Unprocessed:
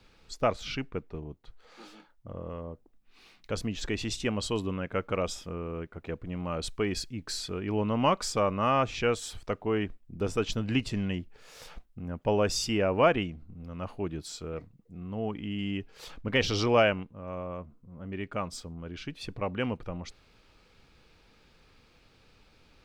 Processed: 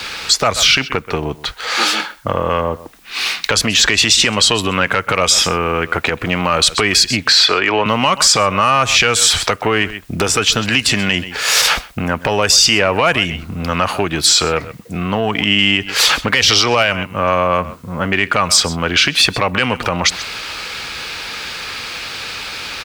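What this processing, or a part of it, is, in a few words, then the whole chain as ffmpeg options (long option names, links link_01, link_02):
mastering chain: -filter_complex "[0:a]asettb=1/sr,asplit=3[link_01][link_02][link_03];[link_01]atrim=end=7.284[link_04];[link_02]atrim=start=7.28:end=7.86,asetpts=PTS-STARTPTS,afade=type=in:duration=0.004:curve=qsin,afade=type=out:start_time=0.576:duration=0.004:curve=qsin,acrossover=split=340 4300:gain=0.178 1 0.0631[link_05][link_06][link_07];[link_05][link_06][link_07]amix=inputs=3:normalize=0[link_08];[link_03]atrim=start=7.856[link_09];[link_04][link_08]acrossfade=duration=0.004:curve1=hsin:curve2=qsin[link_10];[link_10][link_09]acrossfade=duration=0.004:curve1=qsin:curve2=hsin,highpass=44,equalizer=frequency=1600:width_type=o:width=0.77:gain=2,aecho=1:1:128:0.0794,acrossover=split=170|7500[link_11][link_12][link_13];[link_11]acompressor=threshold=-42dB:ratio=4[link_14];[link_12]acompressor=threshold=-38dB:ratio=4[link_15];[link_13]acompressor=threshold=-58dB:ratio=4[link_16];[link_14][link_15][link_16]amix=inputs=3:normalize=0,acompressor=threshold=-41dB:ratio=2,asoftclip=type=tanh:threshold=-31dB,tiltshelf=frequency=670:gain=-9.5,alimiter=level_in=31.5dB:limit=-1dB:release=50:level=0:latency=1,volume=-1dB"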